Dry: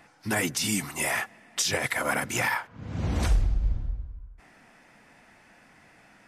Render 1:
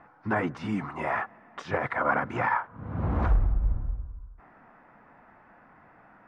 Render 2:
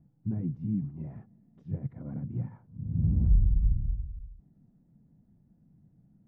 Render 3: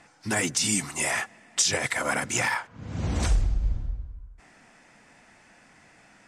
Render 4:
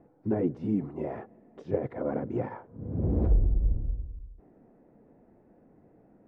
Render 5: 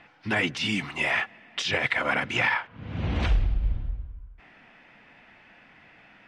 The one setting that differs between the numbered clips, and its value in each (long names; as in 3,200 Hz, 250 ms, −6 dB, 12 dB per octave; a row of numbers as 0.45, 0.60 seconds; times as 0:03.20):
low-pass with resonance, frequency: 1,200, 160, 7,900, 430, 3,000 Hertz